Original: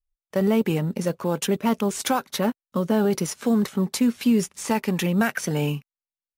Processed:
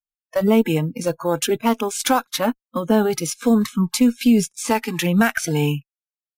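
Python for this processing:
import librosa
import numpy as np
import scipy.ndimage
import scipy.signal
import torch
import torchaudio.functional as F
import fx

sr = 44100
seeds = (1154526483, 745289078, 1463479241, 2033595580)

y = fx.noise_reduce_blind(x, sr, reduce_db=29)
y = fx.cheby_harmonics(y, sr, harmonics=(2,), levels_db=(-21,), full_scale_db=-10.0)
y = y * 10.0 ** (5.0 / 20.0)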